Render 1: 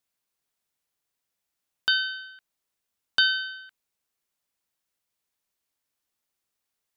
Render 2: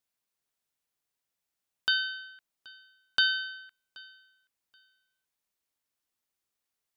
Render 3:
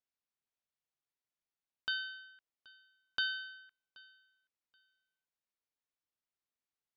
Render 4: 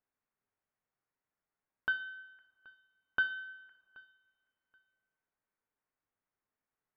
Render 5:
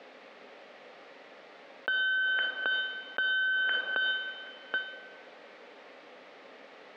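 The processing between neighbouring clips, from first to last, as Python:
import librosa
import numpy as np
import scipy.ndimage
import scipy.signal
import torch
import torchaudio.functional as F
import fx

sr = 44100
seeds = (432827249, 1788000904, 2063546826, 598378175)

y1 = fx.echo_feedback(x, sr, ms=778, feedback_pct=19, wet_db=-24)
y1 = F.gain(torch.from_numpy(y1), -3.5).numpy()
y2 = fx.air_absorb(y1, sr, metres=90.0)
y2 = F.gain(torch.from_numpy(y2), -8.0).numpy()
y3 = scipy.signal.sosfilt(scipy.signal.butter(4, 2000.0, 'lowpass', fs=sr, output='sos'), y2)
y3 = fx.rev_double_slope(y3, sr, seeds[0], early_s=0.46, late_s=2.1, knee_db=-19, drr_db=8.0)
y3 = F.gain(torch.from_numpy(y3), 7.0).numpy()
y4 = fx.cabinet(y3, sr, low_hz=250.0, low_slope=24, high_hz=3800.0, hz=(350.0, 530.0, 1000.0, 1500.0), db=(-5, 8, -8, -7))
y4 = fx.env_flatten(y4, sr, amount_pct=100)
y4 = F.gain(torch.from_numpy(y4), 4.5).numpy()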